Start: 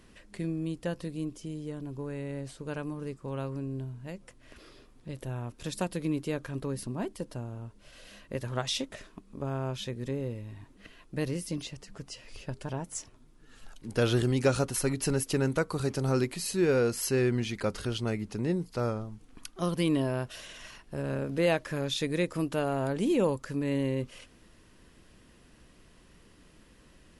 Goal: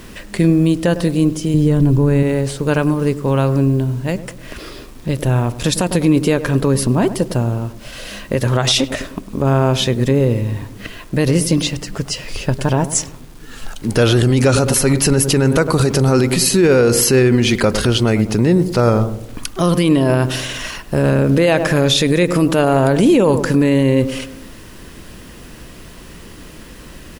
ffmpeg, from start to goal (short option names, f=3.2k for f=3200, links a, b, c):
-filter_complex "[0:a]asettb=1/sr,asplit=3[a][b][c];[a]atrim=end=1.544[d];[b]atrim=start=1.54:end=2.23,asetpts=PTS-STARTPTS,afade=t=in:d=0.004:c=qsin,afade=t=out:st=0.686:d=0.004:c=qsin,lowshelf=f=230:g=12[e];[c]atrim=start=2.226[f];[d][e]acrossfade=d=0.004:c1=hsin:c2=qsin[g];[g][f]acrossfade=d=0.004:c1=qsin:c2=hsin,acrusher=bits=10:mix=0:aa=0.000001,asplit=2[h][i];[i]adelay=102,lowpass=f=930:p=1,volume=-13dB,asplit=2[j][k];[k]adelay=102,lowpass=f=930:p=1,volume=0.54,asplit=2[l][m];[m]adelay=102,lowpass=f=930:p=1,volume=0.54,asplit=2[n][o];[o]adelay=102,lowpass=f=930:p=1,volume=0.54,asplit=2[p][q];[q]adelay=102,lowpass=f=930:p=1,volume=0.54,asplit=2[r][s];[s]adelay=102,lowpass=f=930:p=1,volume=0.54[t];[j][l][n][p][r][t]amix=inputs=6:normalize=0[u];[h][u]amix=inputs=2:normalize=0,alimiter=level_in=24dB:limit=-1dB:release=50:level=0:latency=1,volume=-3.5dB"